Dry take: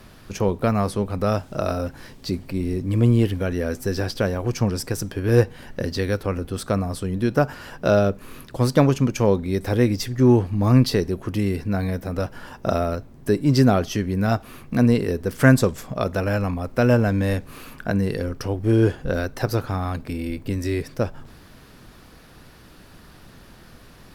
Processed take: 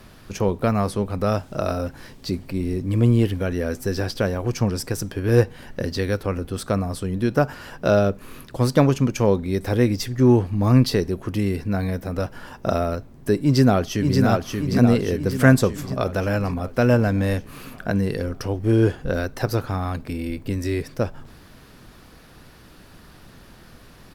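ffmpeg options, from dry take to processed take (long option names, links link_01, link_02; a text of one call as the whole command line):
ffmpeg -i in.wav -filter_complex "[0:a]asplit=2[link_01][link_02];[link_02]afade=type=in:start_time=13.39:duration=0.01,afade=type=out:start_time=14.21:duration=0.01,aecho=0:1:580|1160|1740|2320|2900|3480|4060|4640|5220:0.668344|0.401006|0.240604|0.144362|0.0866174|0.0519704|0.0311823|0.0187094|0.0112256[link_03];[link_01][link_03]amix=inputs=2:normalize=0" out.wav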